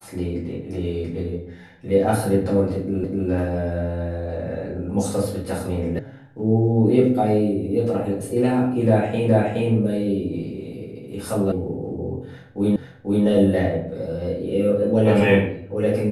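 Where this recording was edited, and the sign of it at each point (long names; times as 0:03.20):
0:03.04: the same again, the last 0.25 s
0:05.99: cut off before it has died away
0:09.28: the same again, the last 0.42 s
0:11.52: cut off before it has died away
0:12.76: the same again, the last 0.49 s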